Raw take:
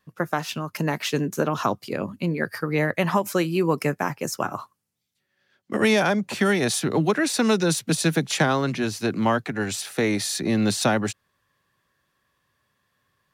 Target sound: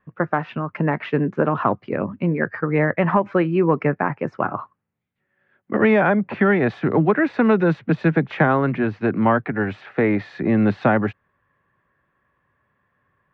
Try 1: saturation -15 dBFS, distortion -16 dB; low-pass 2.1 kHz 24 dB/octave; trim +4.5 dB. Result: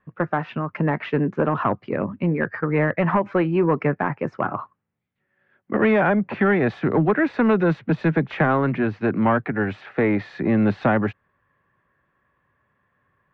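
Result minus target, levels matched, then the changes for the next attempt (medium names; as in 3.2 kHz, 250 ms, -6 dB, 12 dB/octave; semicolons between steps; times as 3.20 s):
saturation: distortion +14 dB
change: saturation -6 dBFS, distortion -30 dB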